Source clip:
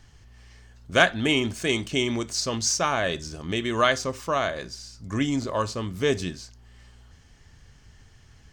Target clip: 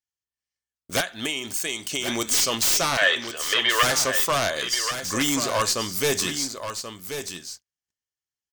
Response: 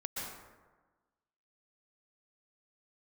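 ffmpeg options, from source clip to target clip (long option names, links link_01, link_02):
-filter_complex "[0:a]agate=range=-47dB:threshold=-43dB:ratio=16:detection=peak,aemphasis=mode=production:type=riaa,asplit=2[link_01][link_02];[link_02]alimiter=limit=-13dB:level=0:latency=1:release=240,volume=2dB[link_03];[link_01][link_03]amix=inputs=2:normalize=0,asettb=1/sr,asplit=3[link_04][link_05][link_06];[link_04]atrim=end=1.004[link_07];[link_05]atrim=start=1:end=2.08,asetpts=PTS-STARTPTS,afade=type=in:duration=0.004:curve=qsin,afade=type=out:start_time=1.076:duration=0.004:curve=qsin,acompressor=threshold=-23dB:ratio=10[link_08];[link_06]atrim=start=2.076[link_09];[link_07][link_08]acrossfade=duration=0.004:curve1=hsin:curve2=qsin[link_10];[link_10][link_09]acrossfade=duration=0.004:curve1=qsin:curve2=hsin,aeval=exprs='0.2*(abs(mod(val(0)/0.2+3,4)-2)-1)':channel_layout=same,aeval=exprs='(tanh(1.41*val(0)+0.4)-tanh(0.4))/1.41':channel_layout=same,asettb=1/sr,asplit=3[link_11][link_12][link_13];[link_11]atrim=end=2.974[link_14];[link_12]atrim=start=2.97:end=3.83,asetpts=PTS-STARTPTS,afade=type=in:duration=0.004:curve=qsin,afade=type=out:start_time=0.856:duration=0.004:curve=qsin,highpass=frequency=440:width=0.5412,highpass=frequency=440:width=1.3066,equalizer=frequency=490:width_type=q:width=4:gain=4,equalizer=frequency=820:width_type=q:width=4:gain=-5,equalizer=frequency=1200:width_type=q:width=4:gain=5,equalizer=frequency=1800:width_type=q:width=4:gain=9,equalizer=frequency=3100:width_type=q:width=4:gain=10,lowpass=frequency=3500:width=0.5412,lowpass=frequency=3500:width=1.3066[link_15];[link_13]atrim=start=3.826[link_16];[link_14][link_15]acrossfade=duration=0.004:curve1=hsin:curve2=qsin[link_17];[link_17][link_16]acrossfade=duration=0.004:curve1=qsin:curve2=hsin,aecho=1:1:1083:0.355"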